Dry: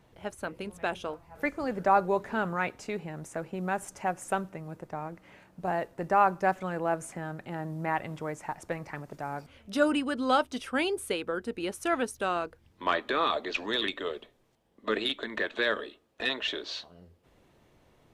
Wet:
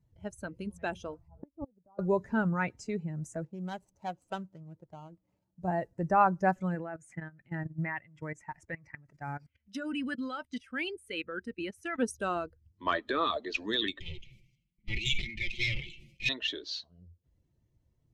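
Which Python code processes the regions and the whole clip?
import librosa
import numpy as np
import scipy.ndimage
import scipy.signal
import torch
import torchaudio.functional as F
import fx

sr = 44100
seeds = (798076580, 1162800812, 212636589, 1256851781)

y = fx.chain(x, sr, fx.lowpass(hz=1100.0, slope=24),
    fx.gate_flip(shuts_db=-24.0, range_db=-26), at=(1.28, 1.99))
y = fx.chain(y, sr, fx.median_filter(points=25),
    fx.low_shelf(hz=350.0, db=-8.5), at=(3.45, 5.61))
y = fx.chain(y, sr, fx.level_steps(step_db=18),
    fx.peak_eq(hz=2000.0, db=10.0, octaves=1.2), at=(6.75, 11.99))
y = fx.chain(y, sr, fx.lower_of_two(delay_ms=5.6),
    fx.curve_eq(hz=(150.0, 1600.0, 2200.0, 4000.0, 7500.0), db=(0, -23, 11, -1, -6)),
    fx.sustainer(db_per_s=53.0), at=(14.0, 16.29))
y = fx.bin_expand(y, sr, power=1.5)
y = scipy.signal.sosfilt(scipy.signal.butter(2, 7800.0, 'lowpass', fs=sr, output='sos'), y)
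y = fx.bass_treble(y, sr, bass_db=10, treble_db=5)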